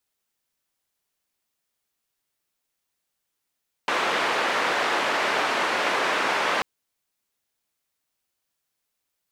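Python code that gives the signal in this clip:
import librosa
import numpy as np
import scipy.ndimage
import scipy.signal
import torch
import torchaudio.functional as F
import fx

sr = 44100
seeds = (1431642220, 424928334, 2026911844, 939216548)

y = fx.band_noise(sr, seeds[0], length_s=2.74, low_hz=390.0, high_hz=1800.0, level_db=-24.0)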